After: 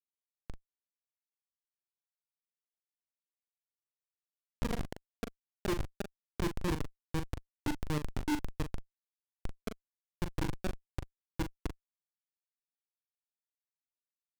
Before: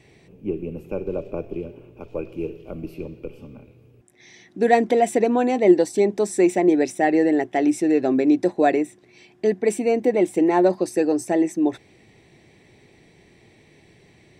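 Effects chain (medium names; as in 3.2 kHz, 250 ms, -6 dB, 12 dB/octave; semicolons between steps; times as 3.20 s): knee-point frequency compression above 1.5 kHz 1.5:1; FFT filter 130 Hz 0 dB, 530 Hz -13 dB, 1.1 kHz -22 dB; Schmitt trigger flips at -21.5 dBFS; doubling 40 ms -8 dB; loudspeaker Doppler distortion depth 0.29 ms; trim +1 dB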